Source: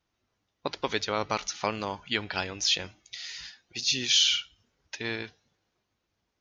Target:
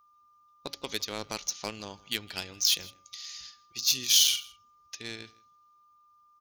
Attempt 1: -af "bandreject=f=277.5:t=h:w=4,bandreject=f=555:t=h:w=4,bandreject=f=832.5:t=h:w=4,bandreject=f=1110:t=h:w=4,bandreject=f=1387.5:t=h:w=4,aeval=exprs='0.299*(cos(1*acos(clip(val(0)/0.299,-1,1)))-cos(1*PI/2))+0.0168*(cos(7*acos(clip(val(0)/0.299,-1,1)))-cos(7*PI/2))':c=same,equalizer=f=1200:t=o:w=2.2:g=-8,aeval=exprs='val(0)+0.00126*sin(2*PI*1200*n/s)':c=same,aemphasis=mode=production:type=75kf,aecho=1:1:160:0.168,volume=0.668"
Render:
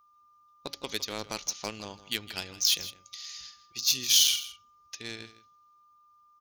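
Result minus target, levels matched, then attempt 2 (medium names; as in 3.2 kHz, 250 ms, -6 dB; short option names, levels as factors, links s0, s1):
echo-to-direct +7.5 dB
-af "bandreject=f=277.5:t=h:w=4,bandreject=f=555:t=h:w=4,bandreject=f=832.5:t=h:w=4,bandreject=f=1110:t=h:w=4,bandreject=f=1387.5:t=h:w=4,aeval=exprs='0.299*(cos(1*acos(clip(val(0)/0.299,-1,1)))-cos(1*PI/2))+0.0168*(cos(7*acos(clip(val(0)/0.299,-1,1)))-cos(7*PI/2))':c=same,equalizer=f=1200:t=o:w=2.2:g=-8,aeval=exprs='val(0)+0.00126*sin(2*PI*1200*n/s)':c=same,aemphasis=mode=production:type=75kf,aecho=1:1:160:0.0708,volume=0.668"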